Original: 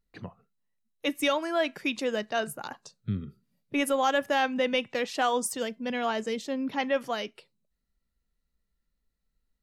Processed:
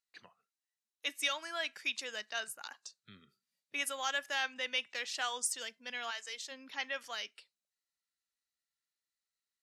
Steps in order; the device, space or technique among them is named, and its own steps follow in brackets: piezo pickup straight into a mixer (LPF 6700 Hz 12 dB/oct; differentiator); 6.1–6.5 HPF 920 Hz -> 330 Hz 12 dB/oct; bell 1600 Hz +4 dB 0.83 oct; gain +4 dB

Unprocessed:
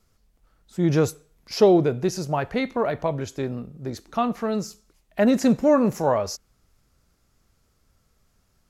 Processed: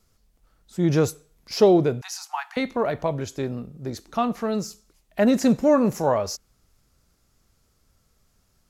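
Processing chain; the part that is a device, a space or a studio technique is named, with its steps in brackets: 2.01–2.57 steep high-pass 770 Hz 96 dB/oct; exciter from parts (in parallel at -8.5 dB: HPF 2700 Hz 12 dB/oct + soft clip -37.5 dBFS, distortion -7 dB)

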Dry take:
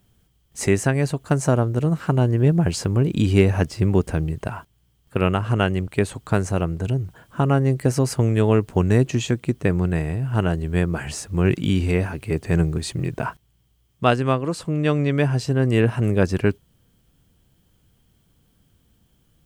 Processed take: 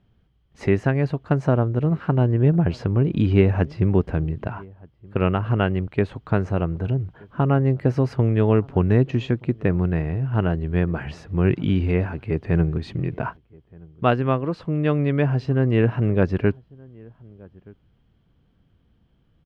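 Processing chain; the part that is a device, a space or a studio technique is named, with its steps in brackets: shout across a valley (air absorption 310 m; outdoor echo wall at 210 m, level -25 dB)

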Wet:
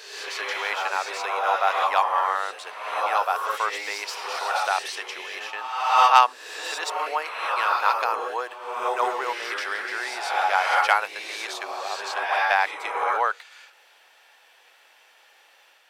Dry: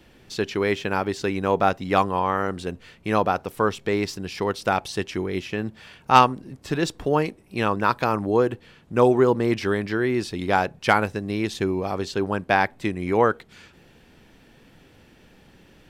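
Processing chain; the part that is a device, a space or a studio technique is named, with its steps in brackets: ghost voice (reverse; reverb RT60 1.2 s, pre-delay 0.109 s, DRR 0 dB; reverse; HPF 710 Hz 24 dB/oct)

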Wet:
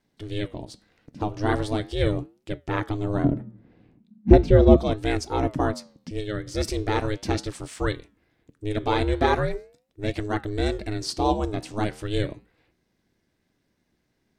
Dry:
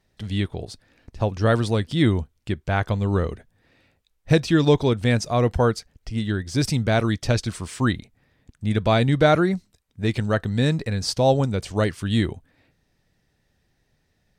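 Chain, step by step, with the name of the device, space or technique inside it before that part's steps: 3.24–4.77 tilt -4 dB/oct; alien voice (ring modulator 210 Hz; flange 0.39 Hz, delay 5.6 ms, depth 9.6 ms, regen -86%); gain +3 dB

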